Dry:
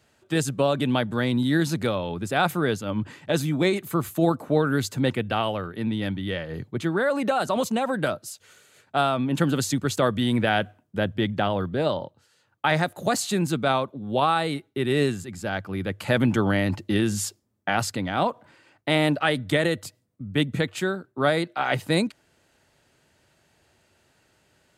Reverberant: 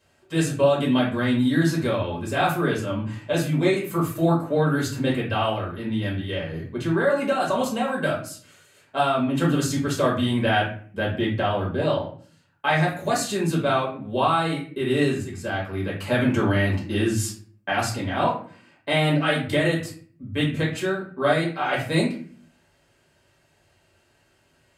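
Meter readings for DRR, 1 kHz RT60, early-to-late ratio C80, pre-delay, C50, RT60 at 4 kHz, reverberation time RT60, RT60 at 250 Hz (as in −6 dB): −4.5 dB, 0.45 s, 11.5 dB, 4 ms, 6.5 dB, 0.30 s, 0.45 s, 0.70 s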